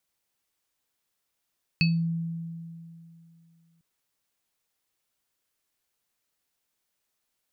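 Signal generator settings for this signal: sine partials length 2.00 s, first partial 166 Hz, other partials 2.58/4.47 kHz, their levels -1/-5 dB, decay 2.68 s, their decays 0.21/0.27 s, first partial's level -19 dB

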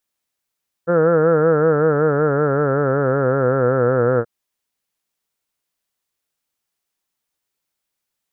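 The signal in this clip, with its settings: formant-synthesis vowel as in heard, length 3.38 s, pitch 167 Hz, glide -5.5 st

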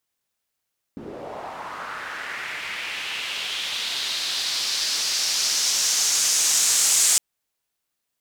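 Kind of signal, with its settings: swept filtered noise pink, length 6.21 s bandpass, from 240 Hz, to 7.5 kHz, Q 2.4, linear, gain ramp +19.5 dB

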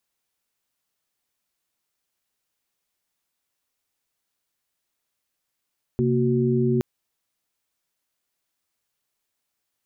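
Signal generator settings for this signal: chord C3/A#3/F#4 sine, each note -22.5 dBFS 0.82 s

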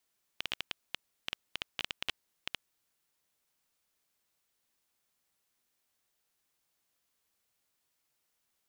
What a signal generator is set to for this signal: random clicks 8.8 per s -15.5 dBFS 2.34 s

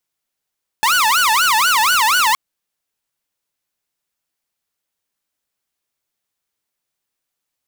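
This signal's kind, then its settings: siren wail 860–1490 Hz 4.1 per s saw -9.5 dBFS 1.52 s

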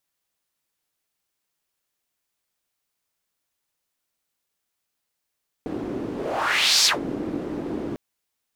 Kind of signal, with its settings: whoosh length 2.30 s, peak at 1.19 s, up 0.78 s, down 0.15 s, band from 310 Hz, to 5.2 kHz, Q 2.9, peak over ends 12 dB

